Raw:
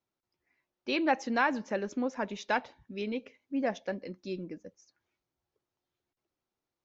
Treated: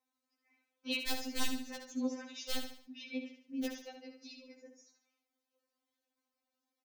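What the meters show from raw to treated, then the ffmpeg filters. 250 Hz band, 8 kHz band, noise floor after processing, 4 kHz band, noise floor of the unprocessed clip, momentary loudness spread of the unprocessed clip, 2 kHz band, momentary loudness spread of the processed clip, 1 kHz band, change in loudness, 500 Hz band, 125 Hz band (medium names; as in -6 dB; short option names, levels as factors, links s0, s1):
-6.0 dB, no reading, under -85 dBFS, +2.5 dB, under -85 dBFS, 11 LU, -10.5 dB, 16 LU, -17.0 dB, -7.0 dB, -12.5 dB, under -10 dB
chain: -filter_complex "[0:a]highpass=55,bandreject=f=60:t=h:w=6,bandreject=f=120:t=h:w=6,bandreject=f=180:t=h:w=6,bandreject=f=240:t=h:w=6,bandreject=f=300:t=h:w=6,bandreject=f=360:t=h:w=6,bandreject=f=420:t=h:w=6,aeval=exprs='(mod(8.41*val(0)+1,2)-1)/8.41':c=same,acrossover=split=140|3000[s0][s1][s2];[s1]acompressor=threshold=0.00158:ratio=2[s3];[s0][s3][s2]amix=inputs=3:normalize=0,volume=25.1,asoftclip=hard,volume=0.0398,aecho=1:1:72|144|216|288:0.422|0.16|0.0609|0.0231,afftfilt=real='re*3.46*eq(mod(b,12),0)':imag='im*3.46*eq(mod(b,12),0)':win_size=2048:overlap=0.75,volume=1.41"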